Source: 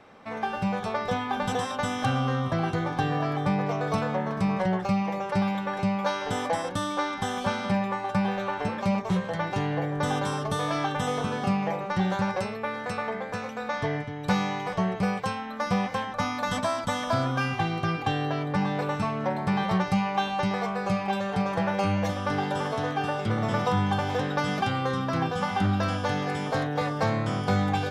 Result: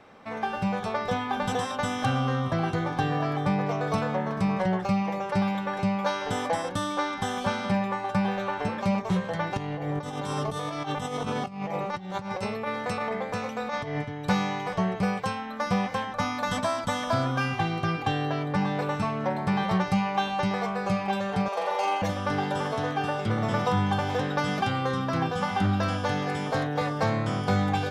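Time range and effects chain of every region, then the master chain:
9.57–14.05 negative-ratio compressor -30 dBFS, ratio -0.5 + bell 1600 Hz -7 dB 0.21 oct
21.48–22.02 HPF 420 Hz 24 dB/oct + bell 1700 Hz -8.5 dB 0.59 oct + flutter echo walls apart 7.4 m, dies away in 0.92 s
whole clip: dry

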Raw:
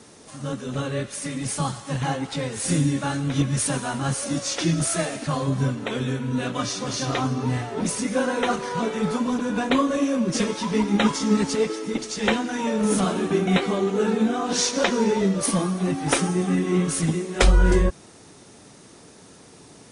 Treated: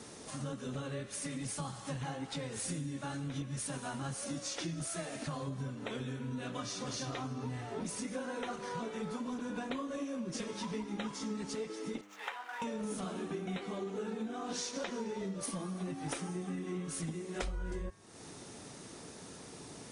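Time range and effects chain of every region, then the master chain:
12.01–12.62 median filter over 9 samples + ladder high-pass 740 Hz, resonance 30% + high shelf 5500 Hz -8.5 dB
whole clip: de-hum 100.9 Hz, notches 31; compressor 6:1, threshold -36 dBFS; gain -1.5 dB

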